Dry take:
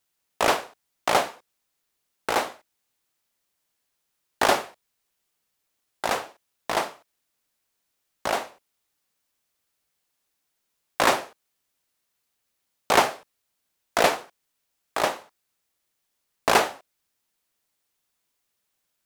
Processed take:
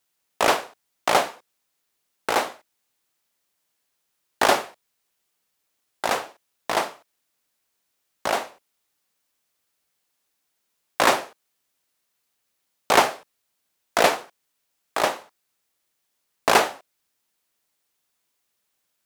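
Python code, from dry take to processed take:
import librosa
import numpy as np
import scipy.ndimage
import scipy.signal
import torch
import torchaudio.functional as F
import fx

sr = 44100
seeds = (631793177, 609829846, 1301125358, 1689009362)

y = fx.low_shelf(x, sr, hz=89.0, db=-7.5)
y = y * 10.0 ** (2.0 / 20.0)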